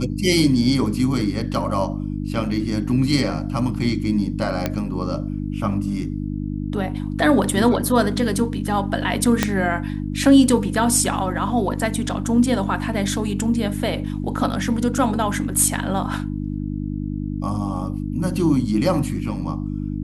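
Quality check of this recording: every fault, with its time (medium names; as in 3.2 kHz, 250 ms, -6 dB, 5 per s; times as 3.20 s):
hum 50 Hz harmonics 6 -26 dBFS
4.66 s: pop -7 dBFS
9.43 s: pop -2 dBFS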